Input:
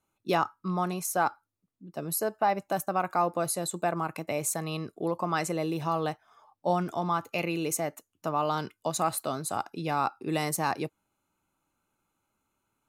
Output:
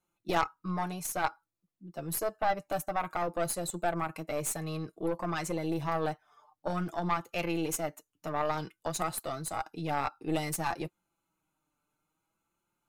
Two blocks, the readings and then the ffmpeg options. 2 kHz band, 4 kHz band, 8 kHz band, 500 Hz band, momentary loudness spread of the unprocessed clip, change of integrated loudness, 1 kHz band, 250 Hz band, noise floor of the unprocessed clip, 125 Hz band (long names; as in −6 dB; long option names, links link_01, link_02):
−2.0 dB, −3.0 dB, −3.5 dB, −3.5 dB, 5 LU, −3.5 dB, −4.0 dB, −3.0 dB, −83 dBFS, −2.5 dB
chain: -af "flanger=delay=5.6:depth=1.2:regen=26:speed=0.55:shape=triangular,aeval=exprs='0.178*(cos(1*acos(clip(val(0)/0.178,-1,1)))-cos(1*PI/2))+0.0316*(cos(4*acos(clip(val(0)/0.178,-1,1)))-cos(4*PI/2))':channel_layout=same"